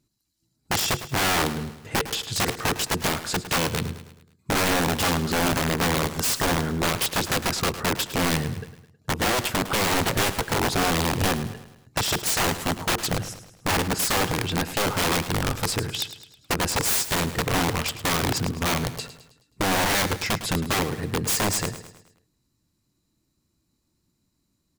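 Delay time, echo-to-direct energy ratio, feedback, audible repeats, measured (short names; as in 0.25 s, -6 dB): 0.106 s, -12.0 dB, 48%, 4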